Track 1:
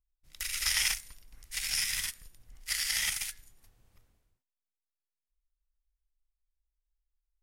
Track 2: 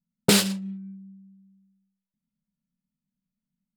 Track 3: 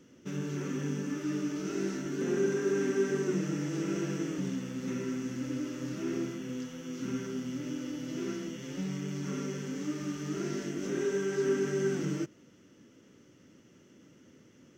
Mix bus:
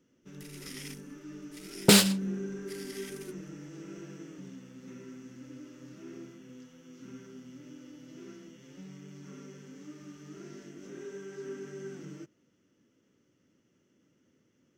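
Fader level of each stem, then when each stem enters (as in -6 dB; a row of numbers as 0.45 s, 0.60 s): -17.0 dB, 0.0 dB, -12.0 dB; 0.00 s, 1.60 s, 0.00 s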